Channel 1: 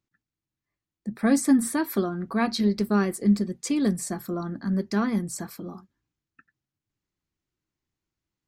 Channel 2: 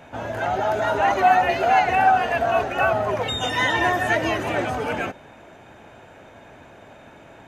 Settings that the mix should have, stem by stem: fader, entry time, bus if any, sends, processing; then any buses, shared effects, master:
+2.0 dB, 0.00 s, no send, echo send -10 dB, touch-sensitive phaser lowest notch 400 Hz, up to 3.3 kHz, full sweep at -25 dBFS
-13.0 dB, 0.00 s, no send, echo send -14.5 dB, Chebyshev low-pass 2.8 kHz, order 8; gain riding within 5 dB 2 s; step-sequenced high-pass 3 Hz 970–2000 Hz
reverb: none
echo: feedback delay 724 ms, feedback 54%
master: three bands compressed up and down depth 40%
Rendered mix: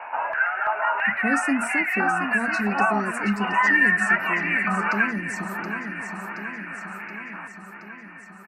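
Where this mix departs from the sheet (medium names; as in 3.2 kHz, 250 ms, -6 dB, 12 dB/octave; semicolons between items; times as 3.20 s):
stem 1 +2.0 dB -> -4.5 dB; stem 2 -13.0 dB -> -4.0 dB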